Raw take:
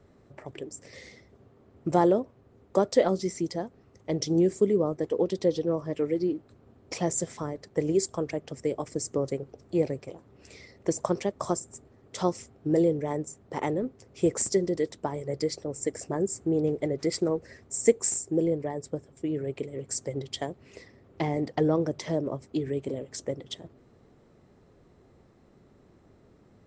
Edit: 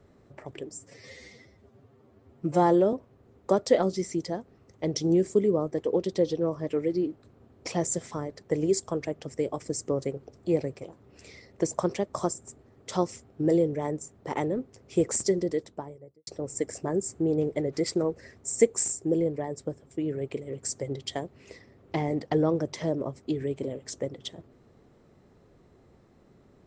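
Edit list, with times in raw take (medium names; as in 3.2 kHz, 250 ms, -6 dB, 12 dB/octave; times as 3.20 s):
0.71–2.19 s: stretch 1.5×
14.63–15.53 s: studio fade out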